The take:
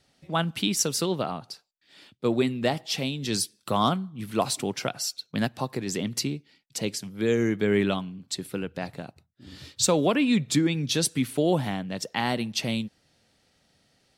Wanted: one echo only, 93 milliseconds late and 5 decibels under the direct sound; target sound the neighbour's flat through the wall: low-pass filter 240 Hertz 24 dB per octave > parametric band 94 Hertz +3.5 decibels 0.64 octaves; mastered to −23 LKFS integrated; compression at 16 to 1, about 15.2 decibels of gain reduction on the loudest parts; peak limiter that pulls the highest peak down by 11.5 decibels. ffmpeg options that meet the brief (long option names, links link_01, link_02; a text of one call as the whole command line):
ffmpeg -i in.wav -af "acompressor=threshold=-33dB:ratio=16,alimiter=level_in=6dB:limit=-24dB:level=0:latency=1,volume=-6dB,lowpass=frequency=240:width=0.5412,lowpass=frequency=240:width=1.3066,equalizer=frequency=94:width_type=o:width=0.64:gain=3.5,aecho=1:1:93:0.562,volume=21.5dB" out.wav